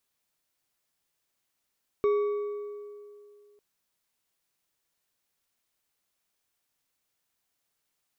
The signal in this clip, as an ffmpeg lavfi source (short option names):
-f lavfi -i "aevalsrc='0.1*pow(10,-3*t/2.44)*sin(2*PI*413*t)+0.0251*pow(10,-3*t/1.8)*sin(2*PI*1138.6*t)+0.00631*pow(10,-3*t/1.471)*sin(2*PI*2231.9*t)+0.00158*pow(10,-3*t/1.265)*sin(2*PI*3689.3*t)+0.000398*pow(10,-3*t/1.122)*sin(2*PI*5509.4*t)':d=1.55:s=44100"